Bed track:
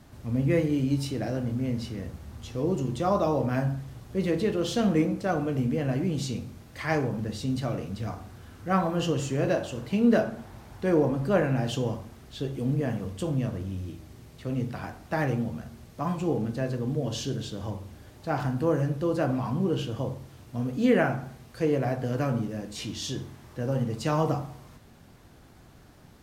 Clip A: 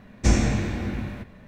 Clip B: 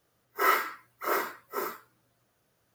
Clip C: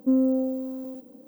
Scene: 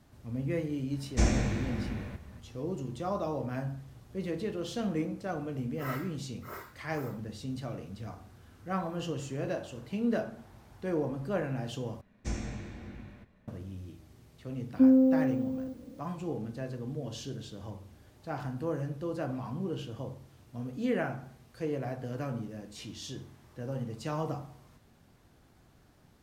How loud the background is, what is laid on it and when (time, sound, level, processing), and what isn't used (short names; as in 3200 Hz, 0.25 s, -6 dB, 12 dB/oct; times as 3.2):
bed track -8.5 dB
0.93 add A -6.5 dB
5.41 add B -15.5 dB
12.01 replace with A -16 dB
14.73 add C -5 dB + tilt -3 dB/oct